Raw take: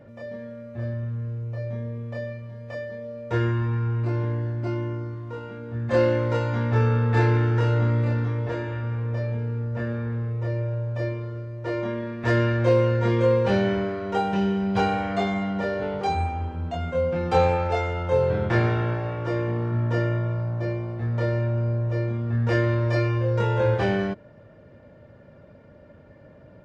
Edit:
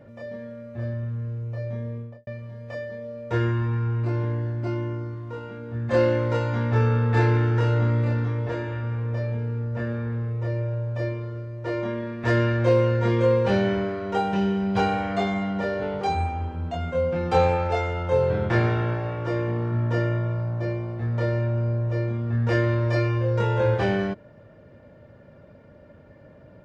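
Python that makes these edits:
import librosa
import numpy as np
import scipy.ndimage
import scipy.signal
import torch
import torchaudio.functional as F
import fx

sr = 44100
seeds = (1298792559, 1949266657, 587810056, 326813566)

y = fx.studio_fade_out(x, sr, start_s=1.93, length_s=0.34)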